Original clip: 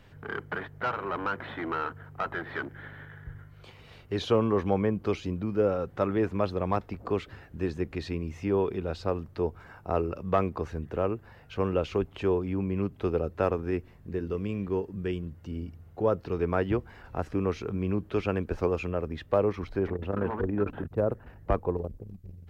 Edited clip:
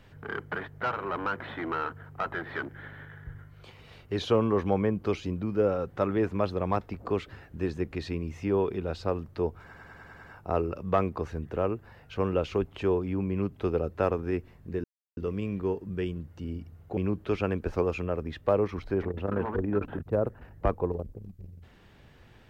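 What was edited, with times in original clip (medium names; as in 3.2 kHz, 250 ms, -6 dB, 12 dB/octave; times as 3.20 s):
9.63 s: stutter 0.10 s, 7 plays
14.24 s: insert silence 0.33 s
16.04–17.82 s: delete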